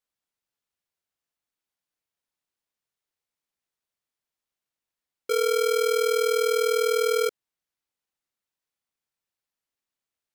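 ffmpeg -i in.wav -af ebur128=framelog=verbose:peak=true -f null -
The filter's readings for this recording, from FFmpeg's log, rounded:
Integrated loudness:
  I:         -23.5 LUFS
  Threshold: -33.7 LUFS
Loudness range:
  LRA:         8.5 LU
  Threshold: -46.8 LUFS
  LRA low:   -33.1 LUFS
  LRA high:  -24.6 LUFS
True peak:
  Peak:      -17.8 dBFS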